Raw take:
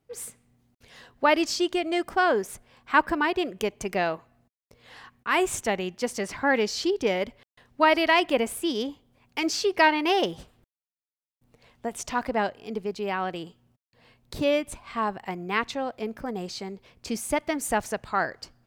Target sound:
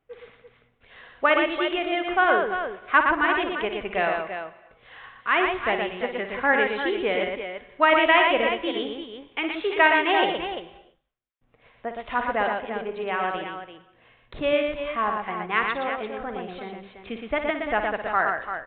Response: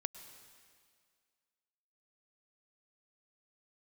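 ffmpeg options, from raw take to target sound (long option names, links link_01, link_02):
-filter_complex "[0:a]equalizer=frequency=150:width=0.31:gain=-12.5,bandreject=frequency=900:width=12,aecho=1:1:57|118|342:0.355|0.596|0.376,asplit=2[link_01][link_02];[1:a]atrim=start_sample=2205,afade=type=out:start_time=0.39:duration=0.01,atrim=end_sample=17640,lowpass=2700[link_03];[link_02][link_03]afir=irnorm=-1:irlink=0,volume=1.5dB[link_04];[link_01][link_04]amix=inputs=2:normalize=0,aresample=8000,aresample=44100"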